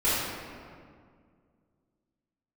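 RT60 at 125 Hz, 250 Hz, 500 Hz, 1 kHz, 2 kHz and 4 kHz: 2.7, 2.6, 2.2, 1.9, 1.6, 1.2 seconds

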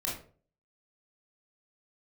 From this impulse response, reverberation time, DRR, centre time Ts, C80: 0.45 s, −5.0 dB, 37 ms, 11.0 dB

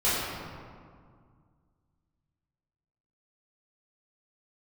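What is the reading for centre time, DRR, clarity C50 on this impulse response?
132 ms, −13.5 dB, −2.0 dB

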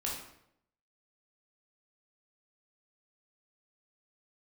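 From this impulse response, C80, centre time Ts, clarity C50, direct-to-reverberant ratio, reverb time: 6.5 dB, 47 ms, 2.5 dB, −4.0 dB, 0.75 s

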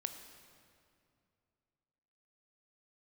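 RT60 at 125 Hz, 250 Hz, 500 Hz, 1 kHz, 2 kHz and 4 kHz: 3.0, 2.8, 2.6, 2.3, 2.1, 1.8 seconds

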